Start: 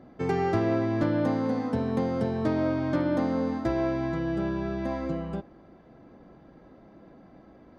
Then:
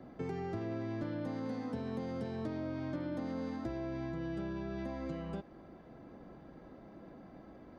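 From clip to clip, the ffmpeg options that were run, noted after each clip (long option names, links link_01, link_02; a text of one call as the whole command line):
ffmpeg -i in.wav -filter_complex "[0:a]acrossover=split=270|1600[link_01][link_02][link_03];[link_01]acompressor=threshold=-41dB:ratio=4[link_04];[link_02]acompressor=threshold=-42dB:ratio=4[link_05];[link_03]acompressor=threshold=-52dB:ratio=4[link_06];[link_04][link_05][link_06]amix=inputs=3:normalize=0,acrossover=split=830[link_07][link_08];[link_08]alimiter=level_in=21dB:limit=-24dB:level=0:latency=1:release=72,volume=-21dB[link_09];[link_07][link_09]amix=inputs=2:normalize=0,volume=-1dB" out.wav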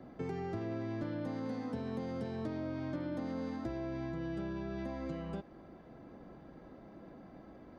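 ffmpeg -i in.wav -af anull out.wav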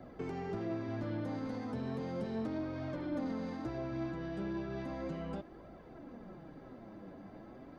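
ffmpeg -i in.wav -af "flanger=delay=3:depth=7.4:regen=-87:speed=1.3:shape=triangular,asoftclip=type=tanh:threshold=-37.5dB,flanger=delay=1.3:depth=9.5:regen=43:speed=0.35:shape=triangular,volume=10.5dB" out.wav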